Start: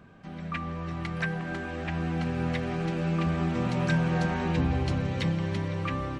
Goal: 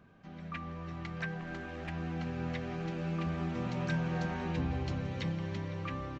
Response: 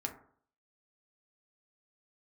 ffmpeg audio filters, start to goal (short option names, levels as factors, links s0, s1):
-filter_complex "[0:a]aresample=16000,aresample=44100,asettb=1/sr,asplit=3[s0][s1][s2];[s0]atrim=end=1.414[s3];[s1]atrim=start=1.41:end=1.9,asetpts=PTS-STARTPTS,afade=t=in:d=0.004:c=qsin,afade=t=out:st=0.486:d=0.004:c=qsin,aeval=exprs='0.0944*(cos(1*acos(clip(val(0)/0.0944,-1,1)))-cos(1*PI/2))+0.00473*(cos(6*acos(clip(val(0)/0.0944,-1,1)))-cos(6*PI/2))':c=same[s4];[s2]atrim=start=1.896[s5];[s3][s4]acrossfade=d=0.004:c1=hsin:c2=qsin[s6];[s6][s5]acrossfade=d=0.004:c1=qsin:c2=hsin,volume=0.422"